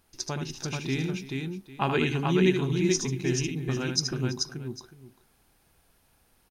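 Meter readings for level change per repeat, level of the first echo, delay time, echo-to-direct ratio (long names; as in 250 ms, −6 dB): repeats not evenly spaced, −7.0 dB, 76 ms, −1.5 dB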